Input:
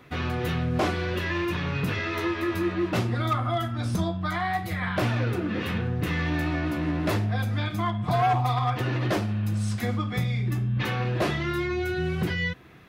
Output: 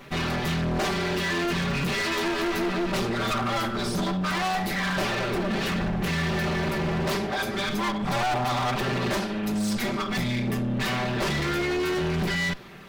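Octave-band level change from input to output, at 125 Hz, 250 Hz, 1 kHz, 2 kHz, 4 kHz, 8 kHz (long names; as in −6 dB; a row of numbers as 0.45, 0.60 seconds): −4.0, +1.5, +0.5, +3.0, +6.0, +8.0 decibels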